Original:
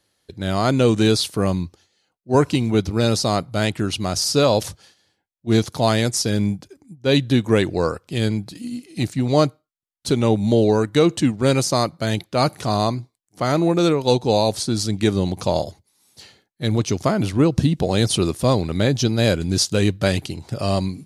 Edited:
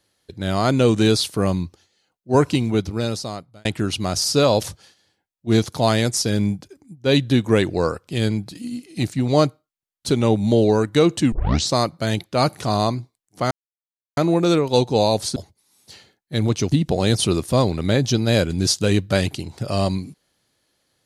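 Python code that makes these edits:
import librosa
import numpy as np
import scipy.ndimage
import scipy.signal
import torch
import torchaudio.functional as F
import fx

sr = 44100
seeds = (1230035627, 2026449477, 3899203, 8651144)

y = fx.edit(x, sr, fx.fade_out_span(start_s=2.56, length_s=1.09),
    fx.tape_start(start_s=11.32, length_s=0.42),
    fx.insert_silence(at_s=13.51, length_s=0.66),
    fx.cut(start_s=14.7, length_s=0.95),
    fx.cut(start_s=17.01, length_s=0.62), tone=tone)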